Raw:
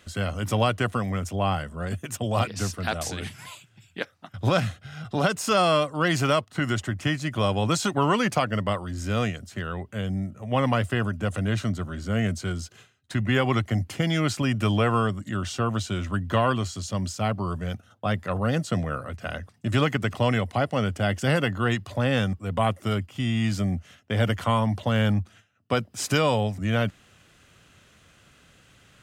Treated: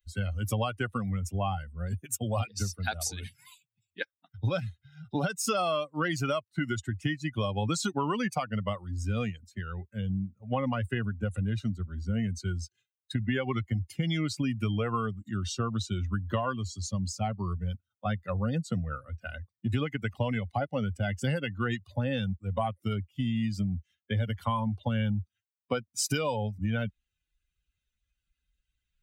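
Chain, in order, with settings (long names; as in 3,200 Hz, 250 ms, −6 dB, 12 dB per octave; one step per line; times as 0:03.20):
spectral dynamics exaggerated over time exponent 2
downward compressor 6 to 1, threshold −34 dBFS, peak gain reduction 12.5 dB
level +7.5 dB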